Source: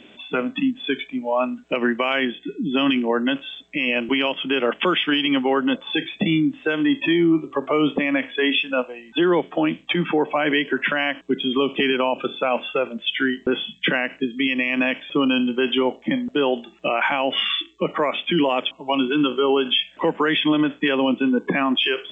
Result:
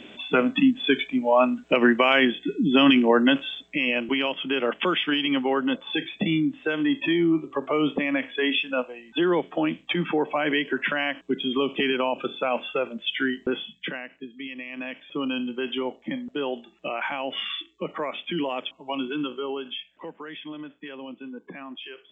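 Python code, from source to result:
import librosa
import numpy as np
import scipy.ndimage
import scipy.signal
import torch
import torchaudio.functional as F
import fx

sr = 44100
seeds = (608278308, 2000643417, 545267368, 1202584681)

y = fx.gain(x, sr, db=fx.line((3.39, 2.5), (4.03, -4.0), (13.44, -4.0), (14.09, -15.0), (14.71, -15.0), (15.26, -8.5), (19.11, -8.5), (20.2, -19.0)))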